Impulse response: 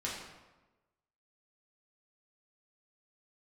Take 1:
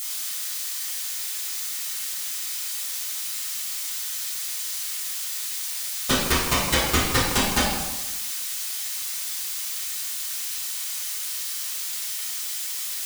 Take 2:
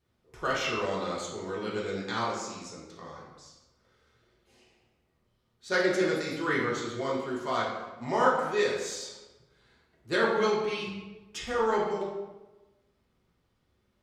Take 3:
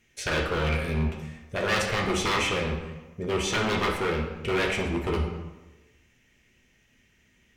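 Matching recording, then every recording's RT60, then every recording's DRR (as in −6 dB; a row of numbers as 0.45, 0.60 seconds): 2; 1.1, 1.1, 1.1 seconds; −11.0, −6.0, −0.5 decibels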